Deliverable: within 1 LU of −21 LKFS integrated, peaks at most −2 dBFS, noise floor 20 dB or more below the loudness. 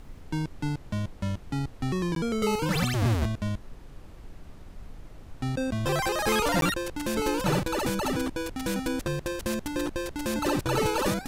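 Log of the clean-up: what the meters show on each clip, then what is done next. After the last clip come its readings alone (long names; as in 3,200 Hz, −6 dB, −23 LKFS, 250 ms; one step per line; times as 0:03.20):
number of dropouts 2; longest dropout 12 ms; background noise floor −46 dBFS; target noise floor −49 dBFS; integrated loudness −28.5 LKFS; sample peak −12.0 dBFS; target loudness −21.0 LKFS
→ repair the gap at 0:02.15/0:06.61, 12 ms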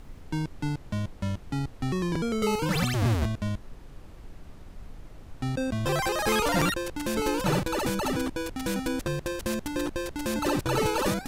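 number of dropouts 0; background noise floor −46 dBFS; target noise floor −49 dBFS
→ noise reduction from a noise print 6 dB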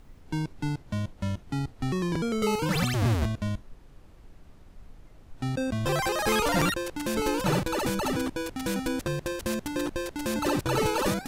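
background noise floor −52 dBFS; integrated loudness −28.5 LKFS; sample peak −12.0 dBFS; target loudness −21.0 LKFS
→ level +7.5 dB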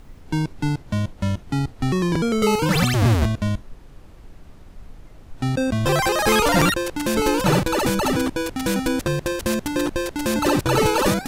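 integrated loudness −21.0 LKFS; sample peak −4.5 dBFS; background noise floor −44 dBFS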